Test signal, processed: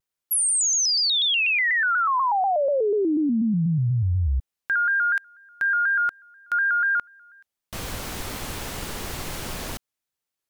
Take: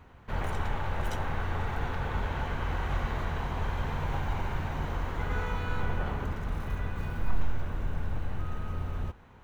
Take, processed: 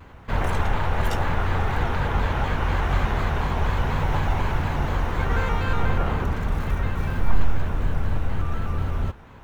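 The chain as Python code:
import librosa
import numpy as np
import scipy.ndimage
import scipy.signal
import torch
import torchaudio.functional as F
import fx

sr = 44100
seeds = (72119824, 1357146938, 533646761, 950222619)

y = fx.vibrato_shape(x, sr, shape='square', rate_hz=4.1, depth_cents=100.0)
y = y * librosa.db_to_amplitude(8.5)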